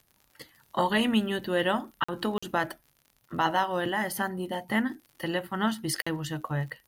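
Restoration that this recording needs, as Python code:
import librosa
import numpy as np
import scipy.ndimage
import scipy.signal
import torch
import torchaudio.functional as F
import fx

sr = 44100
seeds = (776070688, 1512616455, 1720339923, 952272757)

y = fx.fix_declick_ar(x, sr, threshold=6.5)
y = fx.fix_interpolate(y, sr, at_s=(2.04, 2.38, 6.02), length_ms=45.0)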